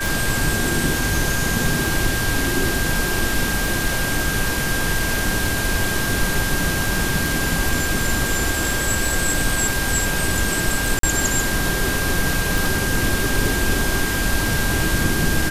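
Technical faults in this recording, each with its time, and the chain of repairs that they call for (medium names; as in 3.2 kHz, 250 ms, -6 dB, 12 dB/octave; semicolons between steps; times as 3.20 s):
tick 33 1/3 rpm
whine 1.6 kHz -25 dBFS
10.99–11.03 s: dropout 43 ms
12.58 s: pop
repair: de-click; band-stop 1.6 kHz, Q 30; interpolate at 10.99 s, 43 ms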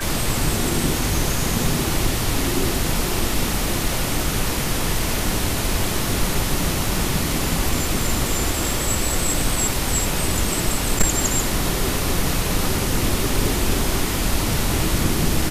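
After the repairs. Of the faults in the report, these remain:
nothing left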